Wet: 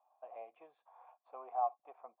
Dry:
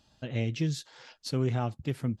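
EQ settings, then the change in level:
formant resonators in series a
high-pass filter 530 Hz 24 dB per octave
high-frequency loss of the air 82 metres
+9.0 dB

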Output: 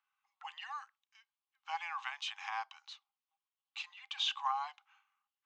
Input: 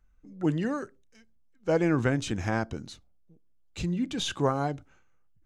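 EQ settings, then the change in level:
high-frequency loss of the air 140 metres
dynamic equaliser 1,400 Hz, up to −6 dB, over −47 dBFS, Q 2.2
Chebyshev high-pass with heavy ripple 780 Hz, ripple 9 dB
+4.5 dB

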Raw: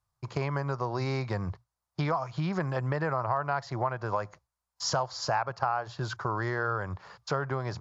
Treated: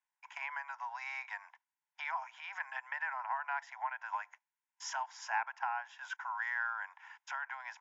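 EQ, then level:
Butterworth high-pass 910 Hz 48 dB per octave
high-frequency loss of the air 82 metres
phaser with its sweep stopped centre 1,200 Hz, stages 6
+2.5 dB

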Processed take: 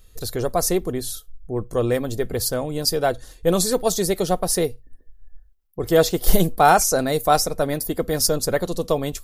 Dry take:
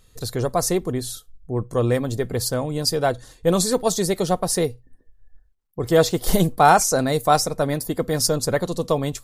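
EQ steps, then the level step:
graphic EQ with 10 bands 125 Hz −11 dB, 250 Hz −6 dB, 500 Hz −4 dB, 1,000 Hz −8 dB, 2,000 Hz −5 dB, 4,000 Hz −5 dB, 8,000 Hz −7 dB
+7.5 dB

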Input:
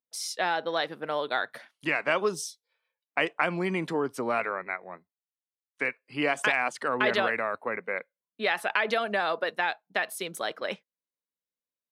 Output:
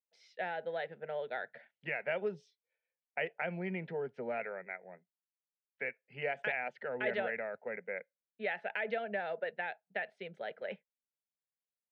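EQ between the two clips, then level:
transistor ladder low-pass 2,500 Hz, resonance 30%
phaser with its sweep stopped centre 300 Hz, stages 6
0.0 dB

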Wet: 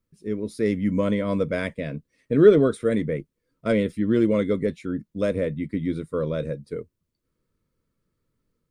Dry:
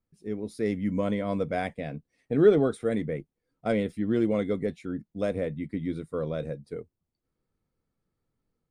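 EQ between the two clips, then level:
Butterworth band-reject 770 Hz, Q 3.1
+5.0 dB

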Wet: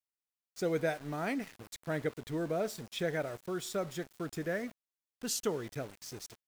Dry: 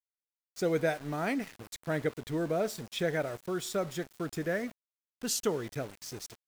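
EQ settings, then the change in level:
no EQ move
−3.0 dB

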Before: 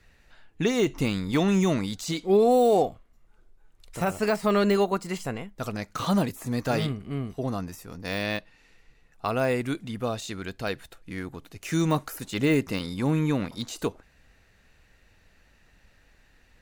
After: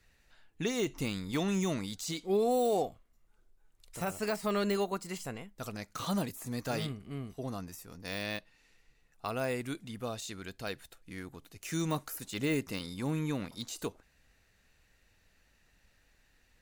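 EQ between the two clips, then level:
high-shelf EQ 4,200 Hz +8 dB
−9.0 dB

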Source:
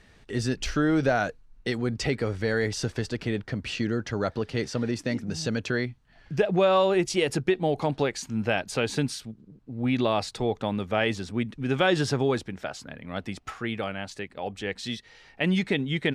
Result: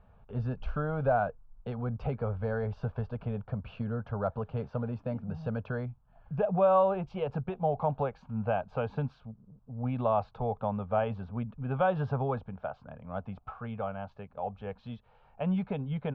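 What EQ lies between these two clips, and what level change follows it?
low-pass filter 2,000 Hz 24 dB per octave
phaser with its sweep stopped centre 800 Hz, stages 4
0.0 dB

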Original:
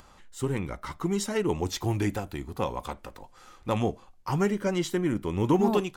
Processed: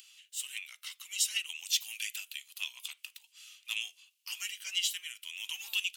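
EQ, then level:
high-pass with resonance 2,800 Hz, resonance Q 5.6
first difference
+4.5 dB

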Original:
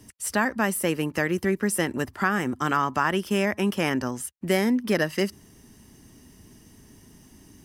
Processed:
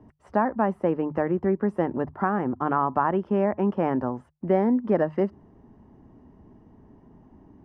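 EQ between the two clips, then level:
low-pass with resonance 860 Hz, resonance Q 1.7
mains-hum notches 50/100/150 Hz
0.0 dB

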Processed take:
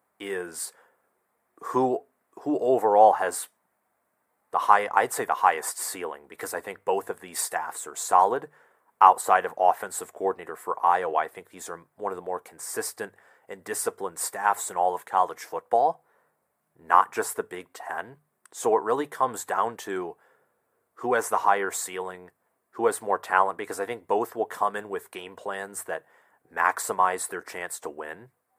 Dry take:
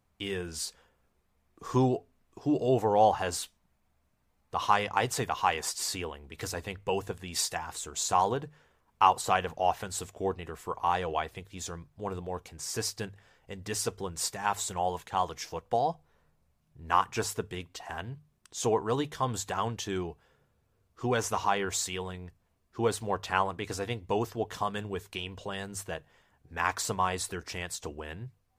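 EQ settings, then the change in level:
high-pass filter 410 Hz 12 dB per octave
flat-topped bell 4,100 Hz −13 dB
+7.0 dB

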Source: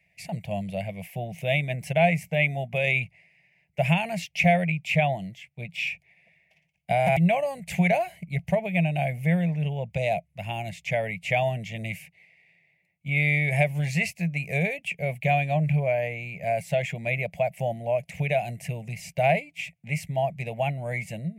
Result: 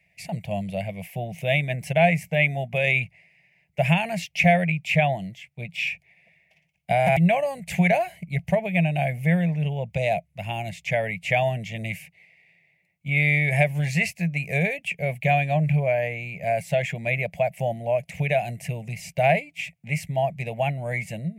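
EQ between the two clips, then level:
dynamic equaliser 1,700 Hz, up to +5 dB, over −47 dBFS, Q 5.3
+2.0 dB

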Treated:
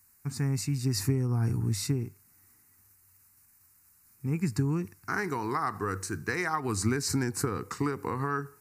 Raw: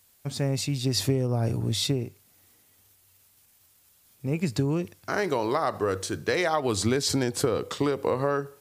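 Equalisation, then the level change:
phaser with its sweep stopped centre 1,400 Hz, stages 4
0.0 dB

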